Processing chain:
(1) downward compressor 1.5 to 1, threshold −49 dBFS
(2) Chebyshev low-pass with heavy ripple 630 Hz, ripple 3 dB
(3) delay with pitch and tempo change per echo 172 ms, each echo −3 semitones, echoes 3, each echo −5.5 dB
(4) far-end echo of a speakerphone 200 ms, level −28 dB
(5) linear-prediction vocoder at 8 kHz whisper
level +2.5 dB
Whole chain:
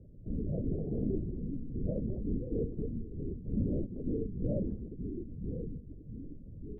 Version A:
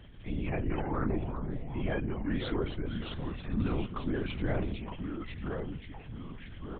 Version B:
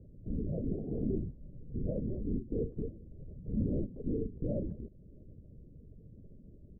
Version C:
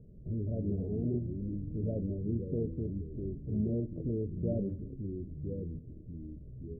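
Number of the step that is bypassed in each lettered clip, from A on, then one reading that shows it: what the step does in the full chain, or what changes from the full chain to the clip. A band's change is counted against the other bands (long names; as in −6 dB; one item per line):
2, change in integrated loudness +1.5 LU
3, change in momentary loudness spread +9 LU
5, change in crest factor −1.5 dB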